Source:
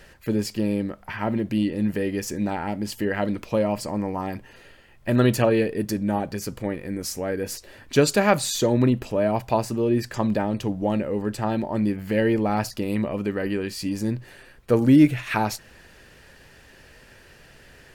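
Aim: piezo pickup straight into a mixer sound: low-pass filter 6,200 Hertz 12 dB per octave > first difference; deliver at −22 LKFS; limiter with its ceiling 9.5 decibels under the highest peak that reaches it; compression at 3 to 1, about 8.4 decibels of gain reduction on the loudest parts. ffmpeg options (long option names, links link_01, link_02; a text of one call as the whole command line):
ffmpeg -i in.wav -af "acompressor=threshold=-22dB:ratio=3,alimiter=limit=-20.5dB:level=0:latency=1,lowpass=6200,aderivative,volume=23dB" out.wav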